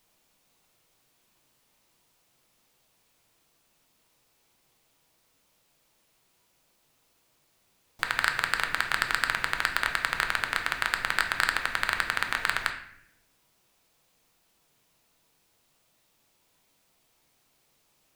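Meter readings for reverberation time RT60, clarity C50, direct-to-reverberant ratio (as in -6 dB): 0.65 s, 8.0 dB, 3.5 dB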